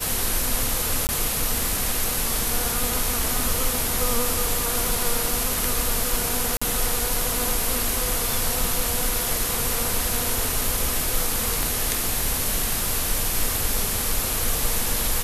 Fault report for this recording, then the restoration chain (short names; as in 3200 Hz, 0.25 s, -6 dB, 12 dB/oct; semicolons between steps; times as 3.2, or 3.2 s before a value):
1.07–1.09 gap 19 ms
6.57–6.62 gap 45 ms
11.63 pop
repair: de-click; interpolate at 1.07, 19 ms; interpolate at 6.57, 45 ms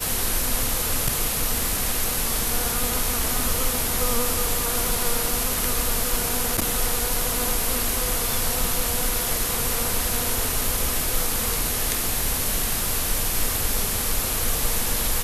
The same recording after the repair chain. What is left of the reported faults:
11.63 pop